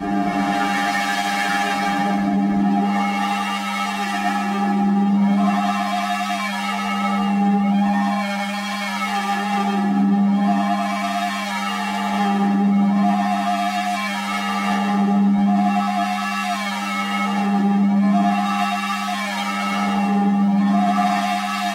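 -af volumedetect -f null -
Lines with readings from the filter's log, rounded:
mean_volume: -19.3 dB
max_volume: -8.0 dB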